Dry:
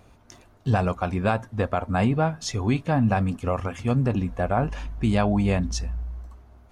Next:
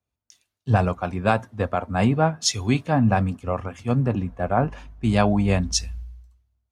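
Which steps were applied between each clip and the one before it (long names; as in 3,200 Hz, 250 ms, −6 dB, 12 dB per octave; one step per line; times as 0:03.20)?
high-pass filter 60 Hz
multiband upward and downward expander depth 100%
level +1.5 dB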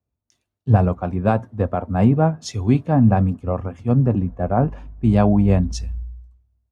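tilt shelving filter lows +8.5 dB, about 1,200 Hz
level −3 dB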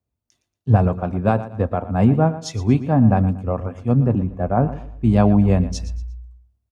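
repeating echo 117 ms, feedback 32%, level −14.5 dB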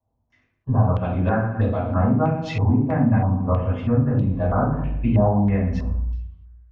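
downward compressor 6 to 1, threshold −25 dBFS, peak gain reduction 16 dB
convolution reverb RT60 0.45 s, pre-delay 3 ms, DRR −8 dB
low-pass on a step sequencer 3.1 Hz 850–3,900 Hz
level −7 dB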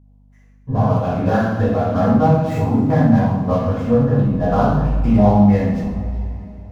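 running median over 15 samples
coupled-rooms reverb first 0.54 s, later 3.5 s, from −18 dB, DRR −6.5 dB
mains hum 50 Hz, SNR 33 dB
level −1.5 dB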